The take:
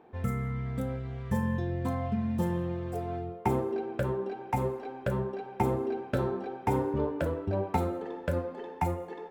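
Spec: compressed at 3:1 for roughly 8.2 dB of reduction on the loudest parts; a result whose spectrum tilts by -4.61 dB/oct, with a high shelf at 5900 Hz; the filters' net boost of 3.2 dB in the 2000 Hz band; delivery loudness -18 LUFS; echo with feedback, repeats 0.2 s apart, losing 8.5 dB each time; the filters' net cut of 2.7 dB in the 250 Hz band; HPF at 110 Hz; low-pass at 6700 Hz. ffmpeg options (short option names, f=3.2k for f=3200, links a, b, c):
-af "highpass=110,lowpass=6.7k,equalizer=f=250:t=o:g=-3.5,equalizer=f=2k:t=o:g=3.5,highshelf=f=5.9k:g=5,acompressor=threshold=-35dB:ratio=3,aecho=1:1:200|400|600|800:0.376|0.143|0.0543|0.0206,volume=20dB"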